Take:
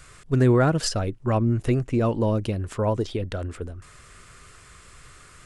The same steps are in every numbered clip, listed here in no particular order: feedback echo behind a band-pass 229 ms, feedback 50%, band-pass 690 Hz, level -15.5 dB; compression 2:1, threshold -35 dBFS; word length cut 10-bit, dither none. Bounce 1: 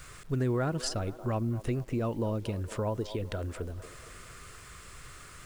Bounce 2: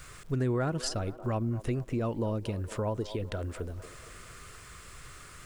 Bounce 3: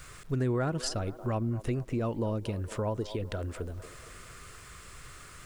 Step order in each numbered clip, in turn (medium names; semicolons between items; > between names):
feedback echo behind a band-pass > compression > word length cut; word length cut > feedback echo behind a band-pass > compression; feedback echo behind a band-pass > word length cut > compression